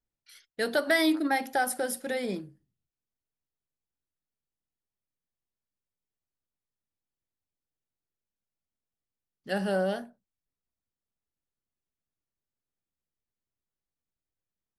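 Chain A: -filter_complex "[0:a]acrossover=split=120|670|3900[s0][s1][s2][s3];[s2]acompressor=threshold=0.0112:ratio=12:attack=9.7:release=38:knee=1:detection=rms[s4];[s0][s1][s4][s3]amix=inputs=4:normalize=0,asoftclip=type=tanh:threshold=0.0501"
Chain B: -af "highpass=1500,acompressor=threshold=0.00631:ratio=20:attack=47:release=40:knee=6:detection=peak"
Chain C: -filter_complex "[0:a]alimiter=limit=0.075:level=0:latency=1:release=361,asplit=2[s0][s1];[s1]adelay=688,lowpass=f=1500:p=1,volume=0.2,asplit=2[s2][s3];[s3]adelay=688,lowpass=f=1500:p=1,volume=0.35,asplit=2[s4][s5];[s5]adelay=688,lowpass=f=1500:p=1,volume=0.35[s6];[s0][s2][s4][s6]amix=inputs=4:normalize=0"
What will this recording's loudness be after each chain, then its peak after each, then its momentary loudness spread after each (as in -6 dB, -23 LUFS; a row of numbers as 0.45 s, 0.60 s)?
-34.0 LUFS, -42.0 LUFS, -33.5 LUFS; -26.0 dBFS, -24.5 dBFS, -21.5 dBFS; 15 LU, 12 LU, 18 LU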